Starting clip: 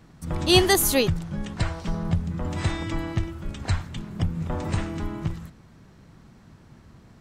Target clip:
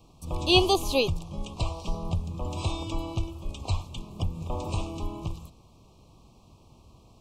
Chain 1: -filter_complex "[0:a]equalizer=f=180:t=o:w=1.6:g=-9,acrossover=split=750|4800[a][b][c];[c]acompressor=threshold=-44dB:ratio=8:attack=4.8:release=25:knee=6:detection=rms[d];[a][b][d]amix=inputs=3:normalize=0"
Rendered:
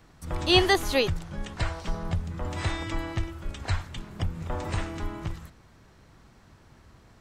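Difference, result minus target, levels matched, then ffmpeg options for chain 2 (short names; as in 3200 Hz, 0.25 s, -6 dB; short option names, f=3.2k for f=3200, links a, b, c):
2000 Hz band +5.0 dB
-filter_complex "[0:a]asuperstop=centerf=1700:order=12:qfactor=1.4,equalizer=f=180:t=o:w=1.6:g=-9,acrossover=split=750|4800[a][b][c];[c]acompressor=threshold=-44dB:ratio=8:attack=4.8:release=25:knee=6:detection=rms[d];[a][b][d]amix=inputs=3:normalize=0"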